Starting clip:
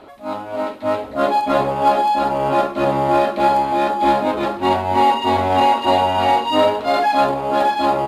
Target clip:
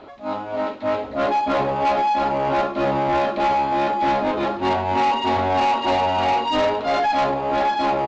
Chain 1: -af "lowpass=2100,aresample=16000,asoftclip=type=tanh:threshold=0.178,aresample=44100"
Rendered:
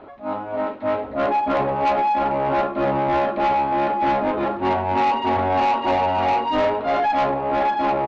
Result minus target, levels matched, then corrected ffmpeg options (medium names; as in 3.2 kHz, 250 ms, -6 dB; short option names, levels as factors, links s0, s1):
8 kHz band -8.0 dB
-af "lowpass=6000,aresample=16000,asoftclip=type=tanh:threshold=0.178,aresample=44100"